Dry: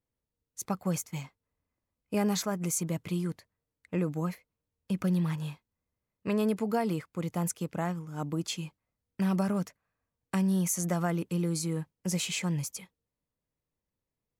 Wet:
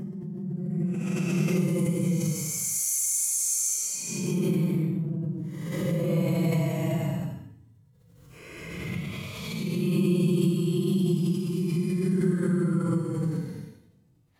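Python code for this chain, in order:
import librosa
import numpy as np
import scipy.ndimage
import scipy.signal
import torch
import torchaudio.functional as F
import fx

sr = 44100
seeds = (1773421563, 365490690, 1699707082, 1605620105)

y = fx.paulstretch(x, sr, seeds[0], factor=18.0, window_s=0.05, from_s=2.57)
y = fx.hpss(y, sr, part='harmonic', gain_db=7)
y = fx.pre_swell(y, sr, db_per_s=30.0)
y = F.gain(torch.from_numpy(y), -2.5).numpy()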